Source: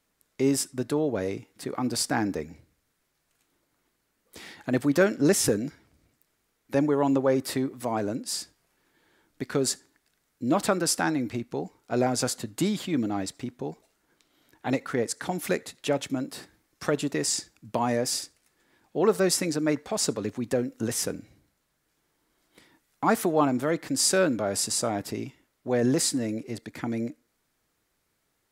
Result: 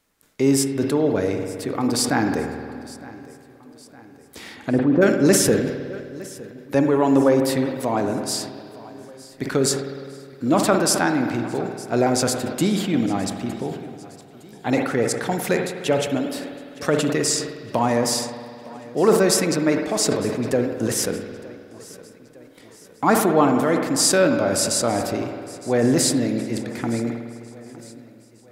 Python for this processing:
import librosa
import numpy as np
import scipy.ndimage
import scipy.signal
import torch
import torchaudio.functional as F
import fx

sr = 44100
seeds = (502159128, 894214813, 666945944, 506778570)

y = fx.env_lowpass_down(x, sr, base_hz=600.0, full_db=-19.5, at=(4.56, 5.01), fade=0.02)
y = fx.echo_feedback(y, sr, ms=911, feedback_pct=50, wet_db=-20.0)
y = fx.rev_spring(y, sr, rt60_s=2.2, pass_ms=(51,), chirp_ms=55, drr_db=5.5)
y = fx.sustainer(y, sr, db_per_s=70.0)
y = y * 10.0 ** (5.0 / 20.0)